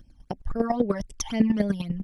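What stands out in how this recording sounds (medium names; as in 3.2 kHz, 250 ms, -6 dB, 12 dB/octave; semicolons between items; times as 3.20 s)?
phasing stages 12, 3.8 Hz, lowest notch 410–1300 Hz; chopped level 10 Hz, depth 65%, duty 15%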